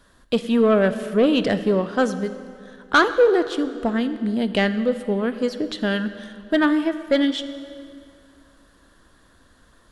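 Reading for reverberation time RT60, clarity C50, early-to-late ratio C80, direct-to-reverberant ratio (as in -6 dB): 2.4 s, 12.5 dB, 13.0 dB, 11.5 dB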